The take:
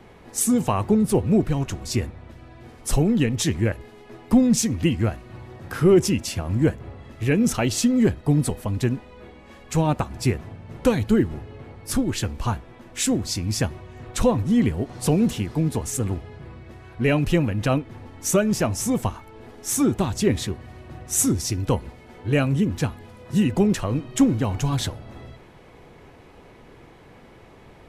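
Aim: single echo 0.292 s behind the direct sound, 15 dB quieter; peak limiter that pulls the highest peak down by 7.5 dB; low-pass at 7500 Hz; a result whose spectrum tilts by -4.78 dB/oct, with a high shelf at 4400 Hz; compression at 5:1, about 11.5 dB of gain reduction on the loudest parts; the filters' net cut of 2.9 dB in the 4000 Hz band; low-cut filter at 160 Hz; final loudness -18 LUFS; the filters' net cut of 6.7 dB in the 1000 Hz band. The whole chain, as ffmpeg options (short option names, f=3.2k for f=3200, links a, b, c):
-af "highpass=160,lowpass=7.5k,equalizer=f=1k:t=o:g=-9,equalizer=f=4k:t=o:g=-5.5,highshelf=f=4.4k:g=4,acompressor=threshold=-26dB:ratio=5,alimiter=limit=-22dB:level=0:latency=1,aecho=1:1:292:0.178,volume=15dB"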